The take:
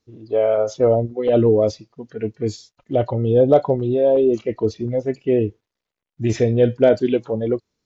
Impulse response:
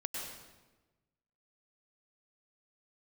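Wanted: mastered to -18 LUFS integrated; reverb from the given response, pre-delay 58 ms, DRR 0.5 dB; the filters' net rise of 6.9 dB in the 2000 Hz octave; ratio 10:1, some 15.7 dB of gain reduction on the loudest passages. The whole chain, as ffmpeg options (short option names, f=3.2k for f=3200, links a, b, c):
-filter_complex "[0:a]equalizer=f=2k:t=o:g=9,acompressor=threshold=-25dB:ratio=10,asplit=2[a][b];[1:a]atrim=start_sample=2205,adelay=58[c];[b][c]afir=irnorm=-1:irlink=0,volume=-2dB[d];[a][d]amix=inputs=2:normalize=0,volume=9.5dB"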